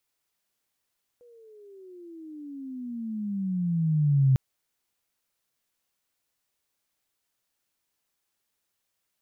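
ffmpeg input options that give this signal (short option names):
-f lavfi -i "aevalsrc='pow(10,(-16+35*(t/3.15-1))/20)*sin(2*PI*490*3.15/(-23*log(2)/12)*(exp(-23*log(2)/12*t/3.15)-1))':d=3.15:s=44100"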